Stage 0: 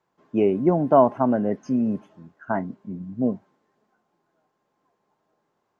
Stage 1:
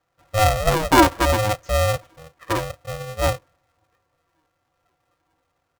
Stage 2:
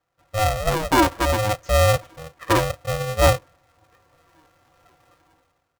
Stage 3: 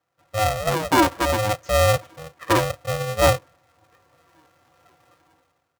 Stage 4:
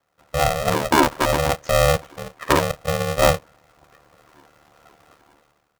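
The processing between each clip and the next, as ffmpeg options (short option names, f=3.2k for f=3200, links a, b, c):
-af "aecho=1:1:4.7:0.53,aeval=exprs='val(0)*sgn(sin(2*PI*320*n/s))':c=same"
-af "dynaudnorm=f=130:g=9:m=16dB,asoftclip=type=tanh:threshold=-3dB,volume=-3.5dB"
-af "highpass=87"
-filter_complex "[0:a]asplit=2[a][b];[b]acompressor=threshold=-26dB:ratio=6,volume=1dB[c];[a][c]amix=inputs=2:normalize=0,aeval=exprs='val(0)*sin(2*PI*37*n/s)':c=same,volume=1.5dB"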